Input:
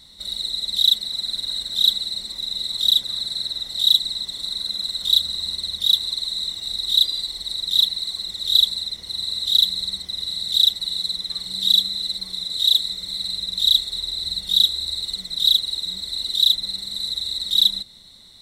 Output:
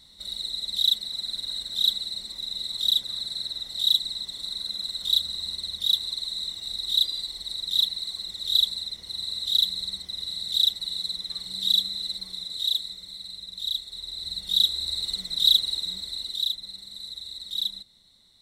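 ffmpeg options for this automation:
-af "volume=5dB,afade=t=out:st=12.12:d=1.08:silence=0.446684,afade=t=in:st=13.84:d=1.23:silence=0.298538,afade=t=out:st=15.68:d=0.85:silence=0.316228"

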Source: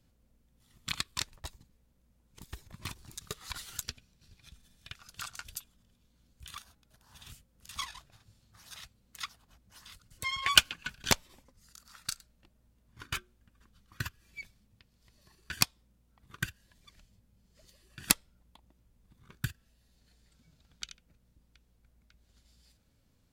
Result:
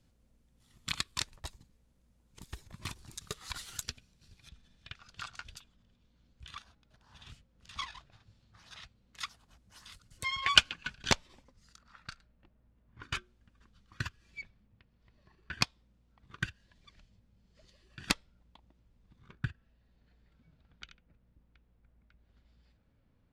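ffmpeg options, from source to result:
-af "asetnsamples=n=441:p=0,asendcmd='4.49 lowpass f 4300;9.18 lowpass f 9600;10.25 lowpass f 5700;11.77 lowpass f 2300;13.03 lowpass f 5900;14.42 lowpass f 2400;15.62 lowpass f 4700;19.32 lowpass f 2300',lowpass=11k"

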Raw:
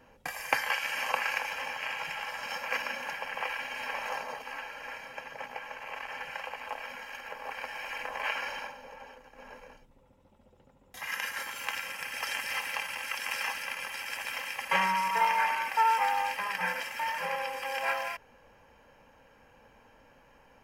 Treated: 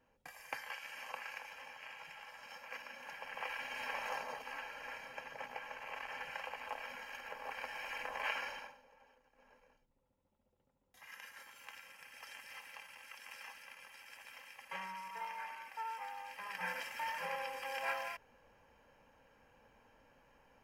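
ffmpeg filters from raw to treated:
-af "volume=5dB,afade=t=in:st=2.91:d=0.88:silence=0.316228,afade=t=out:st=8.36:d=0.49:silence=0.237137,afade=t=in:st=16.26:d=0.51:silence=0.298538"

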